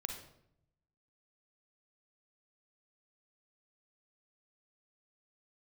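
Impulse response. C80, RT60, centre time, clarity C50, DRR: 9.0 dB, 0.75 s, 26 ms, 5.5 dB, 3.5 dB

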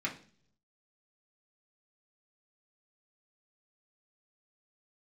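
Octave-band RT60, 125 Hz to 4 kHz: 1.0 s, 0.75 s, 0.55 s, 0.40 s, 0.45 s, 0.55 s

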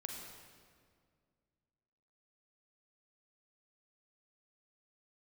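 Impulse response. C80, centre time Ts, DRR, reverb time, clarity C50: 3.0 dB, 77 ms, 0.5 dB, 2.0 s, 2.0 dB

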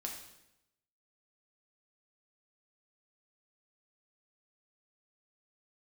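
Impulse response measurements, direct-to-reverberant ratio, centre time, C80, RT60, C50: 0.0 dB, 33 ms, 8.0 dB, 0.85 s, 5.0 dB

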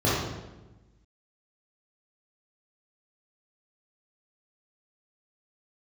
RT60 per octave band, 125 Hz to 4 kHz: 1.5 s, 1.4 s, 1.2 s, 1.0 s, 0.90 s, 0.80 s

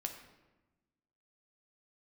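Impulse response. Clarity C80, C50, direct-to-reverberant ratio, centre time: 9.5 dB, 7.5 dB, 4.0 dB, 21 ms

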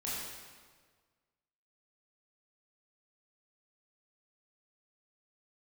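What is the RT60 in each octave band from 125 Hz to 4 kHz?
1.7 s, 1.6 s, 1.6 s, 1.5 s, 1.4 s, 1.3 s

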